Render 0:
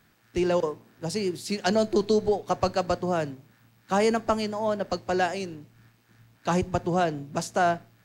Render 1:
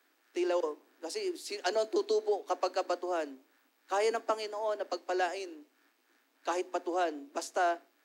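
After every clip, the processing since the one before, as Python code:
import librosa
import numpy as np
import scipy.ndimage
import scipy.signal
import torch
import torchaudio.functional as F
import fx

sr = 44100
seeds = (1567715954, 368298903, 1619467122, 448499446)

y = scipy.signal.sosfilt(scipy.signal.butter(16, 260.0, 'highpass', fs=sr, output='sos'), x)
y = F.gain(torch.from_numpy(y), -6.0).numpy()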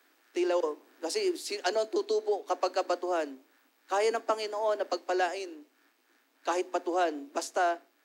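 y = fx.rider(x, sr, range_db=3, speed_s=0.5)
y = F.gain(torch.from_numpy(y), 3.0).numpy()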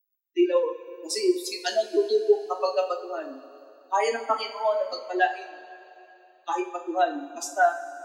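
y = fx.bin_expand(x, sr, power=3.0)
y = fx.rev_double_slope(y, sr, seeds[0], early_s=0.36, late_s=3.2, knee_db=-18, drr_db=1.0)
y = F.gain(torch.from_numpy(y), 8.5).numpy()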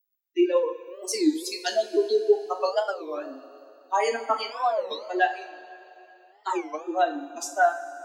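y = fx.record_warp(x, sr, rpm=33.33, depth_cents=250.0)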